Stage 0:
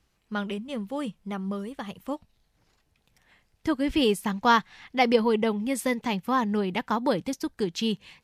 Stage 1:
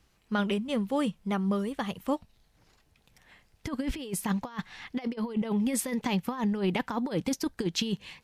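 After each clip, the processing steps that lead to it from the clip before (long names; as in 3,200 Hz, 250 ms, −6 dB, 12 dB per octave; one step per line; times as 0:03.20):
compressor whose output falls as the input rises −28 dBFS, ratio −0.5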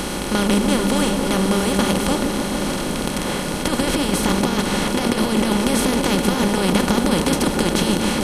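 compressor on every frequency bin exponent 0.2
echo whose low-pass opens from repeat to repeat 146 ms, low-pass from 400 Hz, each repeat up 1 octave, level −3 dB
level +1.5 dB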